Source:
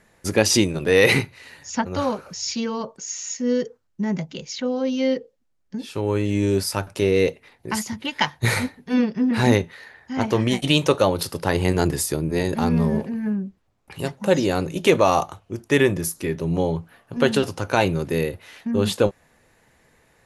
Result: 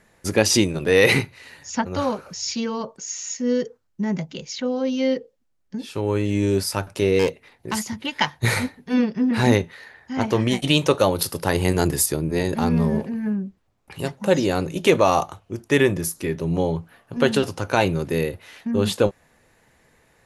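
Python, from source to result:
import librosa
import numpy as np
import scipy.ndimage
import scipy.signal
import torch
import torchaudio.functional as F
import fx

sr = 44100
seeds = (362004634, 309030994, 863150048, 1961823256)

y = fx.self_delay(x, sr, depth_ms=0.21, at=(7.19, 7.75))
y = fx.high_shelf(y, sr, hz=10000.0, db=11.5, at=(11.0, 12.06))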